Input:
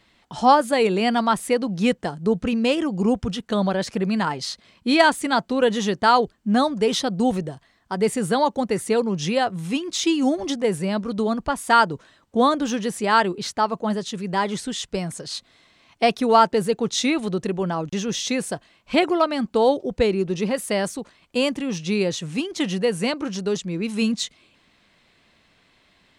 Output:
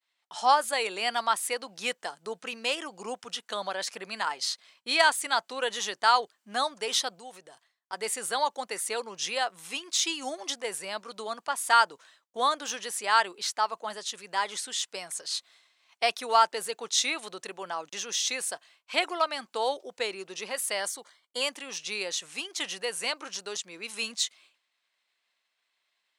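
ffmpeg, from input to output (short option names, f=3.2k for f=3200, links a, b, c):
-filter_complex "[0:a]asettb=1/sr,asplit=3[a][b][c];[a]atrim=end=7.194[d];[b]atrim=start=7.19:end=7.93,asetpts=PTS-STARTPTS,afade=t=in:d=0.004:c=qsin,afade=t=out:st=0.736:d=0.004:c=qsin,acompressor=threshold=-36dB:ratio=2:attack=3.2:release=140:knee=1:detection=peak[e];[c]atrim=start=7.926[f];[d][e]acrossfade=d=0.004:c1=hsin:c2=qsin[g];[g][f]acrossfade=d=0.004:c1=qsin:c2=hsin,asettb=1/sr,asplit=3[h][i][j];[h]atrim=end=20.804[k];[i]atrim=start=20.8:end=21.42,asetpts=PTS-STARTPTS,afade=t=in:d=0.004:c=qsin,afade=t=out:st=0.616:d=0.004:c=qsin,asuperstop=centerf=2600:order=20:qfactor=6.9[l];[j]atrim=start=21.416[m];[k][l]acrossfade=d=0.004:c1=hsin:c2=qsin[n];[n][m]acrossfade=d=0.004:c1=qsin:c2=hsin,highpass=800,agate=range=-33dB:threshold=-51dB:ratio=3:detection=peak,highshelf=f=4.9k:g=7,volume=-4dB"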